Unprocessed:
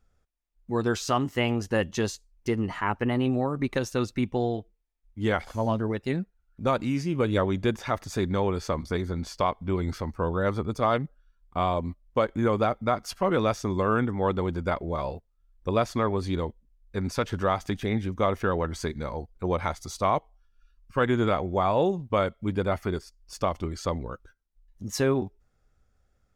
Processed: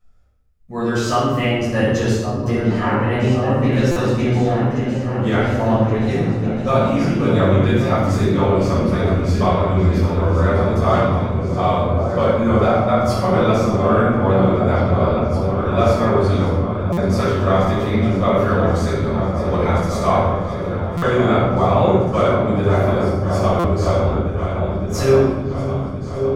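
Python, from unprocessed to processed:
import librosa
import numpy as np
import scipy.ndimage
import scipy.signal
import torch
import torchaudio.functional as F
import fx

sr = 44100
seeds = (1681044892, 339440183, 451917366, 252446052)

y = fx.peak_eq(x, sr, hz=63.0, db=5.0, octaves=0.88)
y = fx.hum_notches(y, sr, base_hz=50, count=5)
y = fx.echo_opening(y, sr, ms=561, hz=200, octaves=2, feedback_pct=70, wet_db=-3)
y = fx.room_shoebox(y, sr, seeds[0], volume_m3=580.0, walls='mixed', distance_m=6.1)
y = fx.buffer_glitch(y, sr, at_s=(3.91, 16.92, 20.97, 23.59), block=256, repeats=8)
y = F.gain(torch.from_numpy(y), -5.0).numpy()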